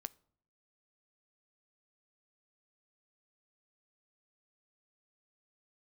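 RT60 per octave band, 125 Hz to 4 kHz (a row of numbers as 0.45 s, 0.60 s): 0.85 s, 0.75 s, 0.65 s, 0.55 s, 0.40 s, 0.35 s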